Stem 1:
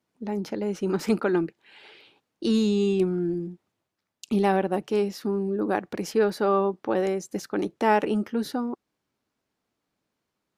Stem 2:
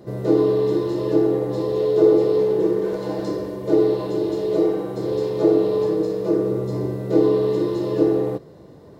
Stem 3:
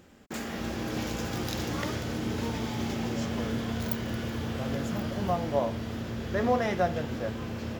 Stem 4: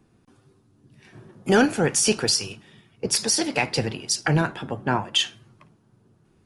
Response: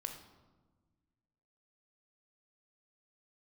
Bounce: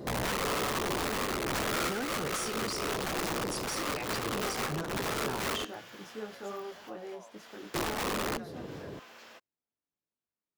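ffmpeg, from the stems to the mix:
-filter_complex "[0:a]flanger=delay=17.5:depth=6:speed=1.2,volume=-15.5dB[a];[1:a]acompressor=threshold=-30dB:ratio=5,aeval=exprs='(mod(26.6*val(0)+1,2)-1)/26.6':c=same,volume=2dB,asplit=3[b][c][d];[b]atrim=end=5.65,asetpts=PTS-STARTPTS,afade=t=out:st=5.646:d=0.004:c=hsin[e];[c]atrim=start=5.65:end=7.74,asetpts=PTS-STARTPTS,volume=0[f];[d]atrim=start=7.74,asetpts=PTS-STARTPTS,afade=t=in:d=0.004:c=hsin[g];[e][f][g]concat=n=3:v=0:a=1[h];[2:a]highpass=870,acompressor=threshold=-41dB:ratio=10,adelay=1600,volume=-5.5dB[i];[3:a]adelay=400,volume=-11dB[j];[a][h][i][j]amix=inputs=4:normalize=0,alimiter=level_in=1.5dB:limit=-24dB:level=0:latency=1:release=111,volume=-1.5dB"

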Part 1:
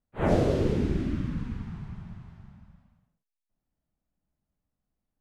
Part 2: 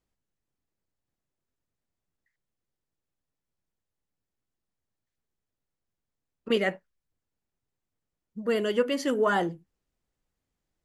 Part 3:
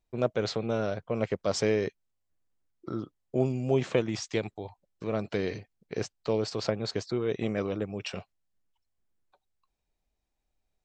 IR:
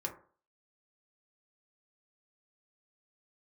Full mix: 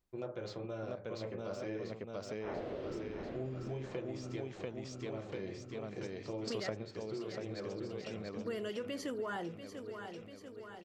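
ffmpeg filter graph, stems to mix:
-filter_complex "[0:a]acrossover=split=310 4400:gain=0.2 1 0.0708[a][b][c];[a][b][c]amix=inputs=3:normalize=0,adelay=2250,volume=-8dB,asplit=2[d][e];[e]volume=-11.5dB[f];[1:a]alimiter=limit=-18.5dB:level=0:latency=1,volume=-3.5dB,asplit=3[g][h][i];[h]volume=-16dB[j];[2:a]deesser=0.8,volume=1dB,asplit=3[k][l][m];[l]volume=-12dB[n];[m]volume=-12.5dB[o];[i]apad=whole_len=478063[p];[k][p]sidechaingate=range=-33dB:threshold=-46dB:ratio=16:detection=peak[q];[3:a]atrim=start_sample=2205[r];[n][r]afir=irnorm=-1:irlink=0[s];[f][j][o]amix=inputs=3:normalize=0,aecho=0:1:691|1382|2073|2764|3455|4146|4837|5528:1|0.56|0.314|0.176|0.0983|0.0551|0.0308|0.0173[t];[d][g][q][s][t]amix=inputs=5:normalize=0,acompressor=threshold=-39dB:ratio=3"

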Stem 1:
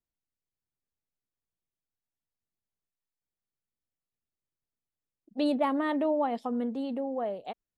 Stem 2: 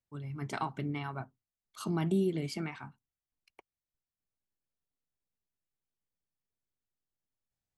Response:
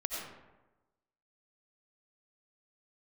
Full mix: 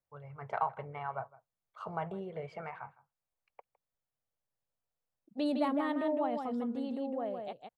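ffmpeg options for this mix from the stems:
-filter_complex "[0:a]equalizer=f=130:w=1.8:g=7.5,volume=-5.5dB,asplit=2[a][b];[b]volume=-5.5dB[c];[1:a]firequalizer=gain_entry='entry(110,0);entry(310,-19);entry(480,14);entry(3900,-13);entry(11000,-29)':delay=0.05:min_phase=1,volume=-6.5dB,asplit=2[d][e];[e]volume=-21dB[f];[c][f]amix=inputs=2:normalize=0,aecho=0:1:159:1[g];[a][d][g]amix=inputs=3:normalize=0"

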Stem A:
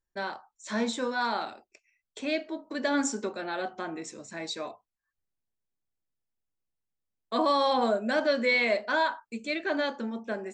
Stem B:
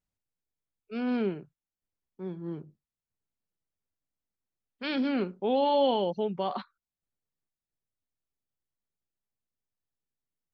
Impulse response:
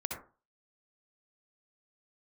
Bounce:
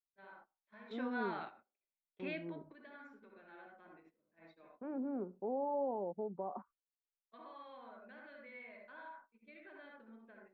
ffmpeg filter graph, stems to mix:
-filter_complex "[0:a]acrossover=split=200|1100[a][b][c];[a]acompressor=threshold=-51dB:ratio=4[d];[b]acompressor=threshold=-38dB:ratio=4[e];[c]acompressor=threshold=-32dB:ratio=4[f];[d][e][f]amix=inputs=3:normalize=0,volume=-9dB,asplit=2[g][h];[h]volume=-14dB[i];[1:a]lowpass=f=1k:w=0.5412,lowpass=f=1k:w=1.3066,equalizer=f=130:t=o:w=0.92:g=-9,acompressor=threshold=-39dB:ratio=1.5,volume=-5.5dB,asplit=2[j][k];[k]apad=whole_len=464777[l];[g][l]sidechaingate=range=-43dB:threshold=-58dB:ratio=16:detection=peak[m];[2:a]atrim=start_sample=2205[n];[i][n]afir=irnorm=-1:irlink=0[o];[m][j][o]amix=inputs=3:normalize=0,lowpass=f=2.9k:w=0.5412,lowpass=f=2.9k:w=1.3066,agate=range=-17dB:threshold=-60dB:ratio=16:detection=peak"

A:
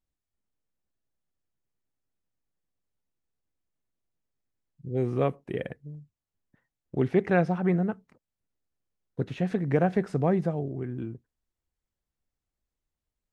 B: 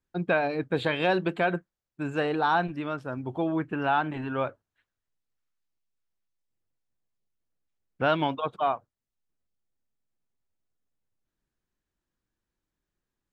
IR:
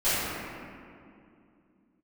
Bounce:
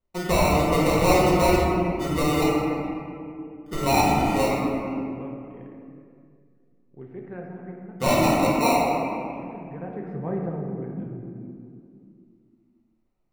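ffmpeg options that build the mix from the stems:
-filter_complex "[0:a]lowpass=1.9k,equalizer=f=630:w=6.4:g=-6.5,volume=-6.5dB,afade=t=in:st=9.69:d=0.69:silence=0.251189,asplit=2[a][b];[b]volume=-13.5dB[c];[1:a]acrusher=samples=27:mix=1:aa=0.000001,volume=-3.5dB,asplit=3[d][e][f];[d]atrim=end=2.44,asetpts=PTS-STARTPTS,afade=t=out:st=2.436:d=0.004:c=hsin[g];[e]atrim=start=2.44:end=3.66,asetpts=PTS-STARTPTS,volume=0[h];[f]atrim=start=3.66,asetpts=PTS-STARTPTS,afade=t=in:d=0.004:c=hsin[i];[g][h][i]concat=n=3:v=0:a=1,asplit=2[j][k];[k]volume=-6dB[l];[2:a]atrim=start_sample=2205[m];[c][l]amix=inputs=2:normalize=0[n];[n][m]afir=irnorm=-1:irlink=0[o];[a][j][o]amix=inputs=3:normalize=0"

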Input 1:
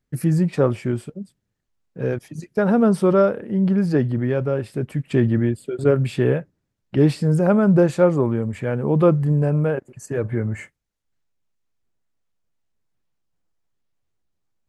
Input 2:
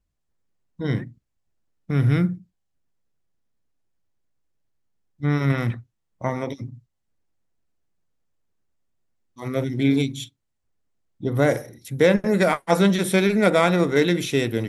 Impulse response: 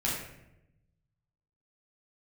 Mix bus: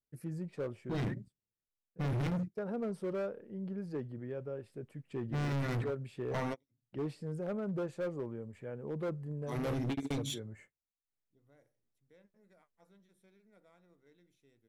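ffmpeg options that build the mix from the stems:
-filter_complex "[0:a]equalizer=f=460:t=o:w=0.91:g=5.5,volume=-12.5dB,afade=t=in:st=11.07:d=0.35:silence=0.316228,asplit=2[a][b];[1:a]adynamicequalizer=threshold=0.0126:dfrequency=2900:dqfactor=1.4:tfrequency=2900:tqfactor=1.4:attack=5:release=100:ratio=0.375:range=2:mode=cutabove:tftype=bell,adelay=100,volume=-4.5dB[c];[b]apad=whole_len=652233[d];[c][d]sidechaingate=range=-43dB:threshold=-58dB:ratio=16:detection=peak[e];[a][e]amix=inputs=2:normalize=0,asoftclip=type=hard:threshold=-31.5dB"

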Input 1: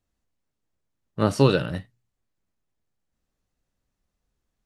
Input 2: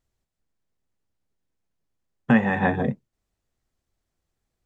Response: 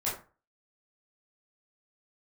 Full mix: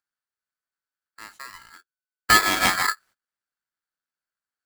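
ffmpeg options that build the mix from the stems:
-filter_complex "[0:a]acompressor=threshold=-35dB:ratio=2,highpass=79,acompressor=mode=upward:threshold=-36dB:ratio=2.5,volume=-11.5dB[a];[1:a]volume=1dB,asplit=2[b][c];[c]apad=whole_len=205114[d];[a][d]sidechaincompress=threshold=-33dB:ratio=8:attack=16:release=135[e];[e][b]amix=inputs=2:normalize=0,agate=range=-26dB:threshold=-49dB:ratio=16:detection=peak,aeval=exprs='val(0)*sgn(sin(2*PI*1500*n/s))':c=same"

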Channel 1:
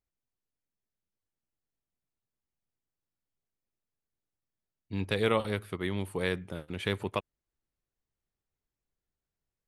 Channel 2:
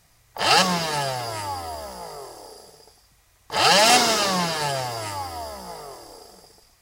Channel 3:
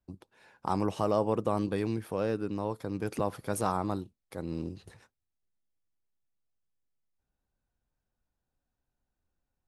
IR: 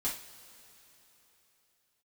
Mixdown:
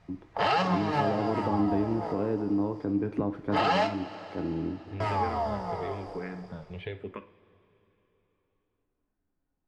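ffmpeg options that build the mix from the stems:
-filter_complex "[0:a]acompressor=threshold=-31dB:ratio=6,asplit=2[a][b];[b]afreqshift=-1[c];[a][c]amix=inputs=2:normalize=1,volume=-1.5dB,asplit=2[d][e];[e]volume=-8dB[f];[1:a]equalizer=f=1.6k:t=o:w=0.77:g=-2.5,volume=1.5dB,asplit=3[g][h][i];[g]atrim=end=3.87,asetpts=PTS-STARTPTS,afade=t=out:st=3.866:d=0.004:c=hsin[j];[h]atrim=start=3.87:end=5,asetpts=PTS-STARTPTS,volume=0[k];[i]atrim=start=5,asetpts=PTS-STARTPTS,afade=t=in:d=0.004:c=hsin[l];[j][k][l]concat=n=3:v=0:a=1,asplit=2[m][n];[n]volume=-11dB[o];[2:a]equalizer=f=310:t=o:w=0.39:g=14.5,acrossover=split=220[p][q];[q]acompressor=threshold=-27dB:ratio=6[r];[p][r]amix=inputs=2:normalize=0,volume=-2dB,asplit=3[s][t][u];[t]volume=-7.5dB[v];[u]apad=whole_len=300638[w];[m][w]sidechaincompress=threshold=-33dB:ratio=8:attack=16:release=158[x];[3:a]atrim=start_sample=2205[y];[f][o][v]amix=inputs=3:normalize=0[z];[z][y]afir=irnorm=-1:irlink=0[aa];[d][x][s][aa]amix=inputs=4:normalize=0,lowpass=2.1k,alimiter=limit=-15.5dB:level=0:latency=1:release=321"

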